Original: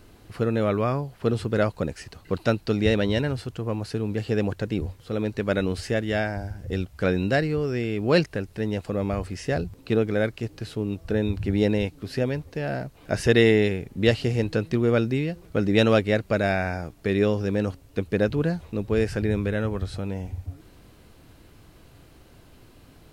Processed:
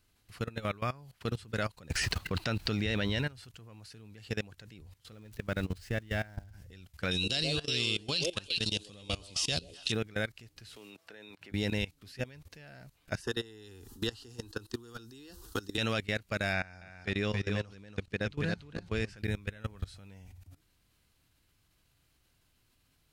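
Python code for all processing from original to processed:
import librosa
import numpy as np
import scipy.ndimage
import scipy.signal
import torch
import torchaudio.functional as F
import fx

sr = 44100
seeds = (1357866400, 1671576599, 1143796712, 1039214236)

y = fx.chain(x, sr, fx.high_shelf(hz=5400.0, db=-10.0),
    fx.quant_dither(seeds[0], bits=12, dither='none'),
    fx.env_flatten(amount_pct=70), at=(1.9, 3.27))
y = fx.chain(y, sr, fx.crossing_spikes(level_db=-29.0),
    fx.lowpass(hz=1600.0, slope=6),
    fx.low_shelf(hz=100.0, db=7.5), at=(5.12, 6.53))
y = fx.chain(y, sr, fx.high_shelf_res(hz=2500.0, db=10.0, q=3.0),
    fx.echo_stepped(ms=125, hz=420.0, octaves=1.4, feedback_pct=70, wet_db=-1),
    fx.resample_bad(factor=2, down='none', up='filtered'), at=(7.11, 9.92))
y = fx.chain(y, sr, fx.highpass(hz=450.0, slope=12),
    fx.high_shelf(hz=4200.0, db=-8.0),
    fx.band_squash(depth_pct=100), at=(10.76, 11.52))
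y = fx.chain(y, sr, fx.fixed_phaser(hz=600.0, stages=6),
    fx.band_squash(depth_pct=100), at=(13.21, 15.78))
y = fx.chain(y, sr, fx.lowpass(hz=7000.0, slope=12),
    fx.echo_single(ms=284, db=-4.5), at=(16.53, 19.17))
y = fx.tone_stack(y, sr, knobs='5-5-5')
y = fx.level_steps(y, sr, step_db=20)
y = y * 10.0 ** (9.0 / 20.0)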